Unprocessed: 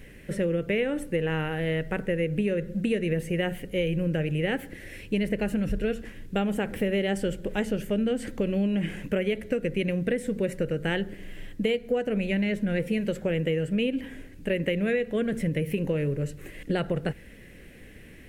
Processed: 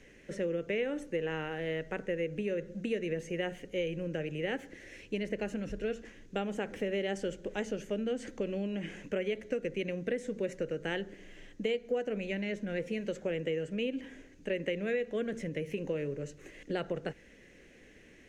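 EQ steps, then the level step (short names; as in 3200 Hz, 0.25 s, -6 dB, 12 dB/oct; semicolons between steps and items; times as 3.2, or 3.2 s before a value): three-band isolator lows -17 dB, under 280 Hz, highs -16 dB, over 7400 Hz; low shelf 250 Hz +10 dB; bell 6400 Hz +11.5 dB 0.41 oct; -7.0 dB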